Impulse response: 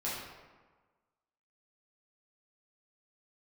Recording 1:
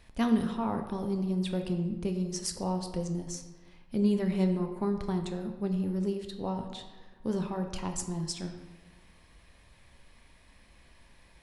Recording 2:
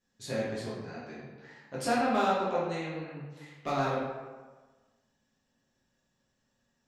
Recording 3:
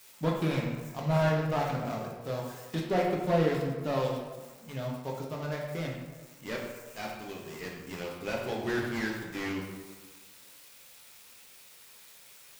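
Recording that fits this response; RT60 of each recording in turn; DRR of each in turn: 2; 1.4, 1.4, 1.4 s; 5.0, -8.5, -2.0 dB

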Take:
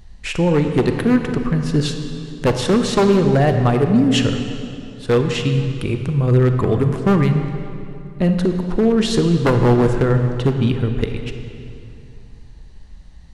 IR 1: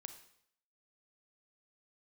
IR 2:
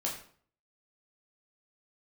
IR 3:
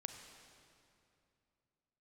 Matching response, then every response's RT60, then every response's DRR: 3; 0.70, 0.50, 2.7 s; 8.0, -3.0, 5.5 dB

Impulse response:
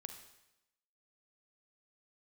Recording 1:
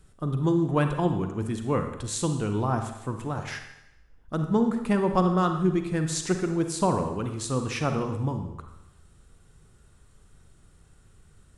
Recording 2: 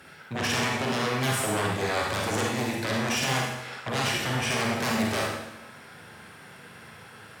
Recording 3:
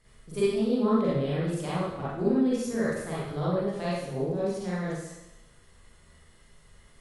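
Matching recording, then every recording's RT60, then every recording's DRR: 1; 0.90, 0.90, 0.90 s; 6.0, -2.5, -9.5 dB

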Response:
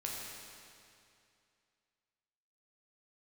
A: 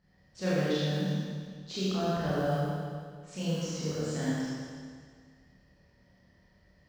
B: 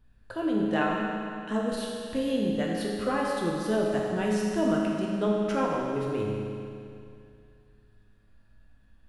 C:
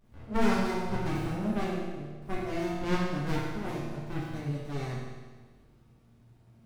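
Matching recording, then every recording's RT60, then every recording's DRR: B; 1.9, 2.5, 1.4 s; -11.0, -3.5, -6.5 dB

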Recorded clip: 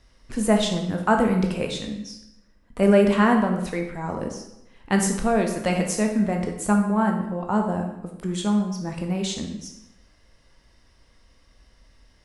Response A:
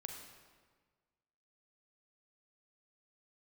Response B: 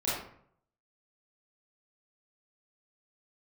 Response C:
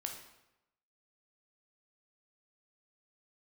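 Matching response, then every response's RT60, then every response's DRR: C; 1.5, 0.65, 0.90 s; 2.5, -9.5, 2.0 dB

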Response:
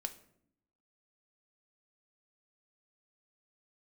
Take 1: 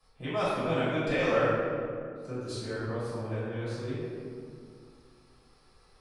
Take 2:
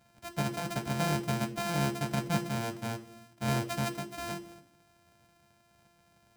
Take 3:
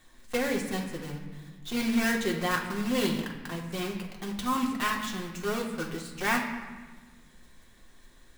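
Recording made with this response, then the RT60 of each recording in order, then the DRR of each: 2; 2.2, 0.70, 1.3 s; -13.5, 6.5, -1.0 dB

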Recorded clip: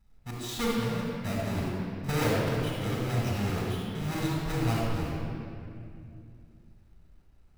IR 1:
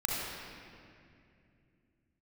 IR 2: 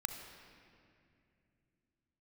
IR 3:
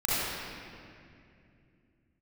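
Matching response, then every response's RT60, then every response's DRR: 1; 2.5, 2.5, 2.5 s; -4.5, 5.5, -10.5 dB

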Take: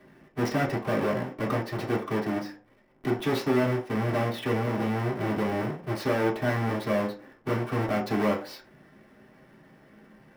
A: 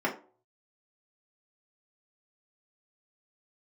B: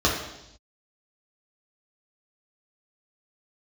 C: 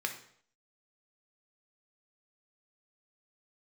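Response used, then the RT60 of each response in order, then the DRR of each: A; not exponential, 0.85 s, 0.60 s; -4.5, -4.5, 4.0 dB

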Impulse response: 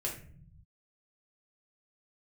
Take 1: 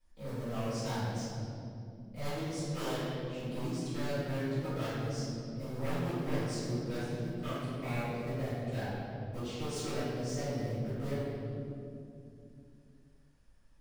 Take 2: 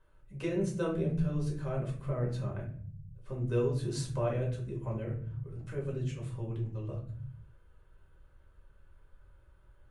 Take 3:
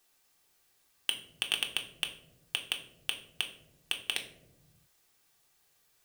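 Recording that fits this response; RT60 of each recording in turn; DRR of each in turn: 2; 2.6, 0.50, 1.0 s; -15.5, -3.0, 1.5 dB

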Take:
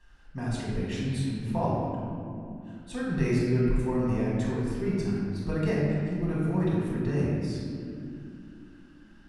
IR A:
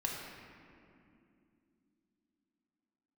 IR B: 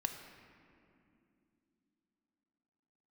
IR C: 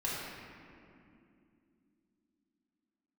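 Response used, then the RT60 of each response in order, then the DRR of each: C; 2.7, 2.8, 2.7 s; -1.5, 5.5, -7.0 dB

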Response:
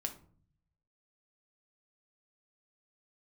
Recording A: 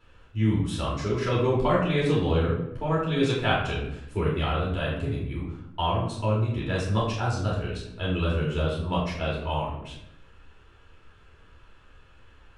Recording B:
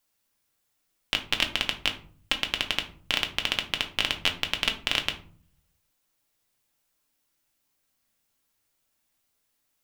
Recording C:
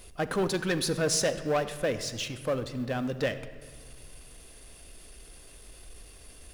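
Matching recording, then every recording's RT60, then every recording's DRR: B; 0.80, 0.50, 2.0 s; -6.5, 4.0, 10.0 dB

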